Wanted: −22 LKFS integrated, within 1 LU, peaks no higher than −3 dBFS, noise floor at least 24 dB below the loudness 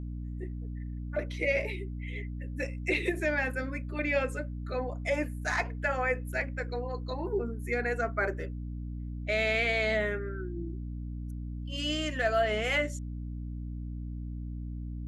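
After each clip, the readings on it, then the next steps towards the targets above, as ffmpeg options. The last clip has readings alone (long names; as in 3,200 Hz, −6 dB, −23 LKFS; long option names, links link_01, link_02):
mains hum 60 Hz; hum harmonics up to 300 Hz; level of the hum −35 dBFS; integrated loudness −32.5 LKFS; sample peak −16.0 dBFS; target loudness −22.0 LKFS
→ -af "bandreject=frequency=60:width_type=h:width=4,bandreject=frequency=120:width_type=h:width=4,bandreject=frequency=180:width_type=h:width=4,bandreject=frequency=240:width_type=h:width=4,bandreject=frequency=300:width_type=h:width=4"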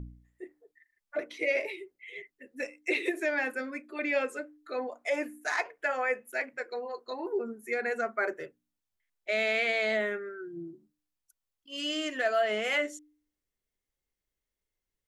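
mains hum none found; integrated loudness −31.5 LKFS; sample peak −17.0 dBFS; target loudness −22.0 LKFS
→ -af "volume=9.5dB"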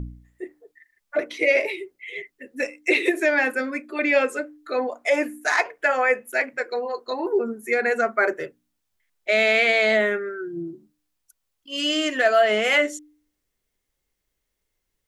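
integrated loudness −22.0 LKFS; sample peak −7.5 dBFS; background noise floor −78 dBFS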